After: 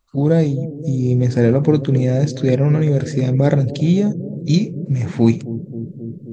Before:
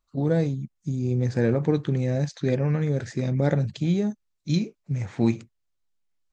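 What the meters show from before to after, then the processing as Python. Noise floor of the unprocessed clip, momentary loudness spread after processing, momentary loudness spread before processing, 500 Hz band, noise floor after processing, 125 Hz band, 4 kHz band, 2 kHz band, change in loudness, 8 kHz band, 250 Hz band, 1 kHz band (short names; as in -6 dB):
-75 dBFS, 10 LU, 7 LU, +8.0 dB, -36 dBFS, +8.5 dB, +7.5 dB, +5.0 dB, +8.5 dB, n/a, +8.5 dB, +6.5 dB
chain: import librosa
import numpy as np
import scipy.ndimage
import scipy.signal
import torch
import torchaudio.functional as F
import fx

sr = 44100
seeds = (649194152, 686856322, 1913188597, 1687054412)

y = fx.dynamic_eq(x, sr, hz=1500.0, q=0.77, threshold_db=-44.0, ratio=4.0, max_db=-4)
y = fx.echo_bbd(y, sr, ms=266, stages=1024, feedback_pct=80, wet_db=-13.5)
y = F.gain(torch.from_numpy(y), 8.5).numpy()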